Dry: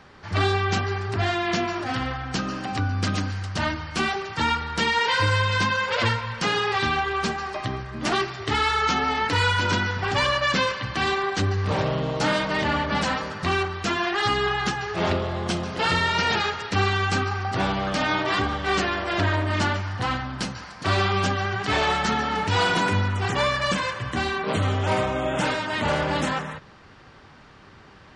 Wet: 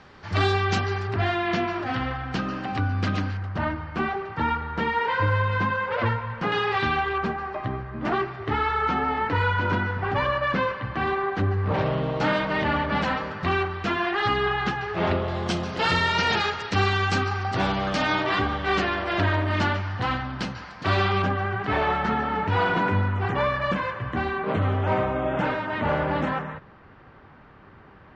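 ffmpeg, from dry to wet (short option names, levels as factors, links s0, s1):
-af "asetnsamples=n=441:p=0,asendcmd='1.07 lowpass f 3100;3.37 lowpass f 1600;6.52 lowpass f 3100;7.18 lowpass f 1700;11.74 lowpass f 2900;15.28 lowpass f 6200;18.25 lowpass f 3800;21.22 lowpass f 1900',lowpass=6600"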